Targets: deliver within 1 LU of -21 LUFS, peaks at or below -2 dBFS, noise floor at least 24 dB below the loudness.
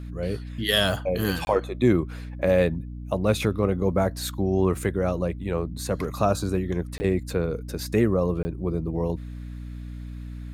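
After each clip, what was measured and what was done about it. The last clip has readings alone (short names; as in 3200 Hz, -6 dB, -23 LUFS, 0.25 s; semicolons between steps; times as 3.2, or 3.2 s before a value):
dropouts 3; longest dropout 20 ms; hum 60 Hz; harmonics up to 300 Hz; hum level -34 dBFS; loudness -25.5 LUFS; peak -7.5 dBFS; loudness target -21.0 LUFS
-> interpolate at 1.45/6.98/8.43, 20 ms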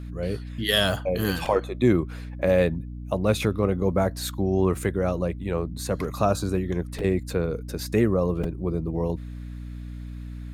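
dropouts 0; hum 60 Hz; harmonics up to 300 Hz; hum level -34 dBFS
-> de-hum 60 Hz, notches 5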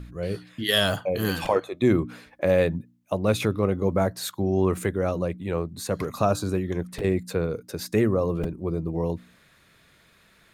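hum none; loudness -26.0 LUFS; peak -7.5 dBFS; loudness target -21.0 LUFS
-> gain +5 dB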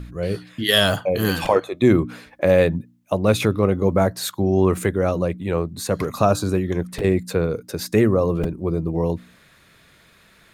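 loudness -21.0 LUFS; peak -2.5 dBFS; noise floor -54 dBFS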